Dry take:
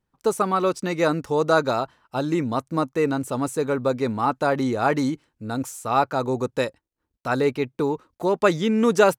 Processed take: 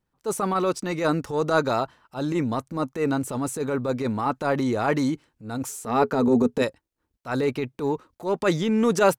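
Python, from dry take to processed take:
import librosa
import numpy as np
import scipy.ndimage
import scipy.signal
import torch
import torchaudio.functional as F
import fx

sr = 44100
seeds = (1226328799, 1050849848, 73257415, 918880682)

y = fx.small_body(x, sr, hz=(240.0, 420.0), ring_ms=85, db=fx.line((5.68, 13.0), (6.61, 16.0)), at=(5.68, 6.61), fade=0.02)
y = fx.transient(y, sr, attack_db=-10, sustain_db=2)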